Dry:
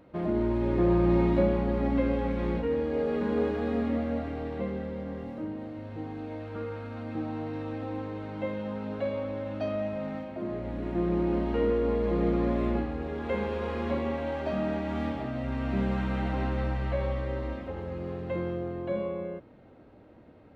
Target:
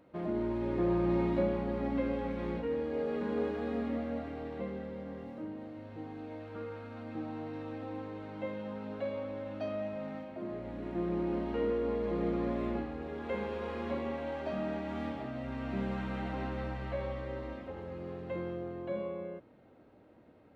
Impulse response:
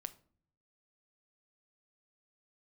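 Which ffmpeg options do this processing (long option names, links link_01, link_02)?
-af "lowshelf=frequency=89:gain=-9,volume=-5dB"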